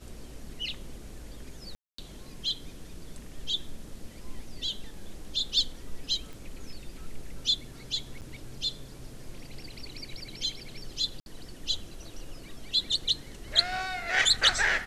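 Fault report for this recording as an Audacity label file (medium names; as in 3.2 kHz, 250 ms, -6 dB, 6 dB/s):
1.750000	1.980000	dropout 234 ms
6.330000	6.330000	pop
8.210000	8.220000	dropout 8.3 ms
11.200000	11.260000	dropout 61 ms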